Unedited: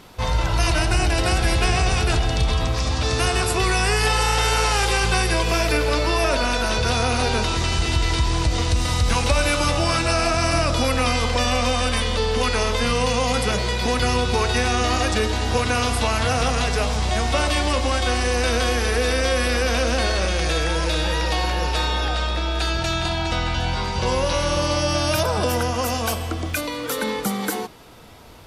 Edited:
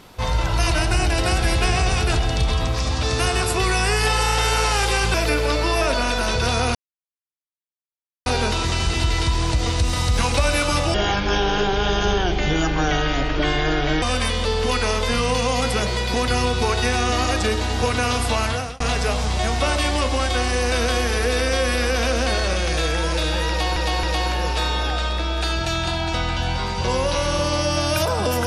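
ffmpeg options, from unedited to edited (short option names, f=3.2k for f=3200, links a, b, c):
-filter_complex "[0:a]asplit=8[a][b][c][d][e][f][g][h];[a]atrim=end=5.142[i];[b]atrim=start=5.568:end=7.18,asetpts=PTS-STARTPTS,afade=t=out:st=1.608:d=0.004:c=hsin,apad=pad_dur=1.51[j];[c]atrim=start=7.18:end=9.864,asetpts=PTS-STARTPTS,afade=t=in:d=0.004:c=hsin[k];[d]atrim=start=9.86:end=11.74,asetpts=PTS-STARTPTS,asetrate=26901,aresample=44100[l];[e]atrim=start=11.736:end=16.52,asetpts=PTS-STARTPTS,afade=t=out:st=4.424:d=0.36[m];[f]atrim=start=16.52:end=21.482,asetpts=PTS-STARTPTS,afade=t=in:d=0.004:c=hsin[n];[g]atrim=start=21.208:end=21.482[o];[h]atrim=start=21.208[p];[j][k]concat=n=2:v=0:a=1[q];[i][q]acrossfade=d=0.004:c1=hsin:c2=hsin[r];[r][l]acrossfade=d=0.004:c1=hsin:c2=hsin[s];[m][n]concat=n=2:v=0:a=1[t];[s][t]acrossfade=d=0.004:c1=hsin:c2=hsin[u];[u][o]acrossfade=d=0.004:c1=hsin:c2=hsin[v];[v][p]acrossfade=d=0.004:c1=hsin:c2=hsin"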